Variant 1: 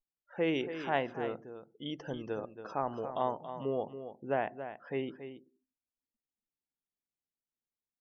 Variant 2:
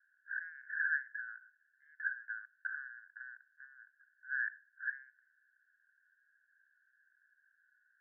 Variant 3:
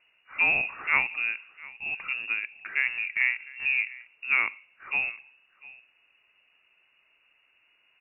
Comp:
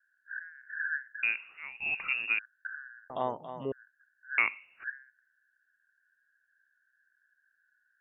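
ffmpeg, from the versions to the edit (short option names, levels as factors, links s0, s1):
-filter_complex "[2:a]asplit=2[s0][s1];[1:a]asplit=4[s2][s3][s4][s5];[s2]atrim=end=1.232[s6];[s0]atrim=start=1.228:end=2.392[s7];[s3]atrim=start=2.388:end=3.102[s8];[0:a]atrim=start=3.098:end=3.722[s9];[s4]atrim=start=3.718:end=4.382[s10];[s1]atrim=start=4.378:end=4.842[s11];[s5]atrim=start=4.838[s12];[s6][s7]acrossfade=d=0.004:c1=hsin:c2=hsin[s13];[s13][s8]acrossfade=d=0.004:c1=hsin:c2=hsin[s14];[s14][s9]acrossfade=d=0.004:c1=hsin:c2=hsin[s15];[s15][s10]acrossfade=d=0.004:c1=hsin:c2=hsin[s16];[s16][s11]acrossfade=d=0.004:c1=hsin:c2=hsin[s17];[s17][s12]acrossfade=d=0.004:c1=hsin:c2=hsin"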